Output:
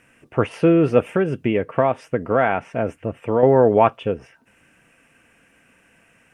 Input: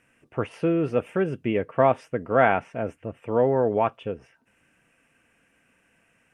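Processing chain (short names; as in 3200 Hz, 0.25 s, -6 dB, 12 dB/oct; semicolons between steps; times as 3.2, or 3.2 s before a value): 1.06–3.43 compressor 2.5:1, threshold -25 dBFS, peak gain reduction 8.5 dB; gain +8 dB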